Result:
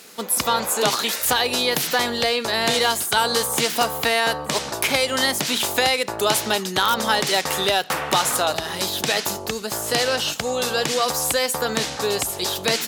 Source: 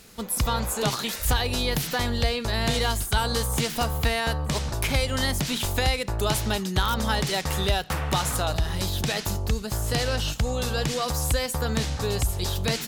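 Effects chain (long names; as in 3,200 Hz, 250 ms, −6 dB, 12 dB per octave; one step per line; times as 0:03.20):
high-pass filter 310 Hz 12 dB per octave
level +7 dB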